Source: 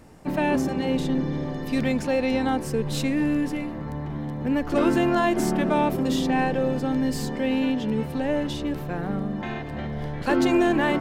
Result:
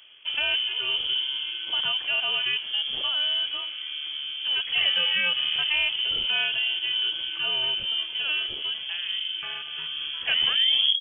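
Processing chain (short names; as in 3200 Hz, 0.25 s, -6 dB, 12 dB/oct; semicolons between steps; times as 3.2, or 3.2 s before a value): tape stop at the end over 0.67 s; inverted band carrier 3300 Hz; gain -3 dB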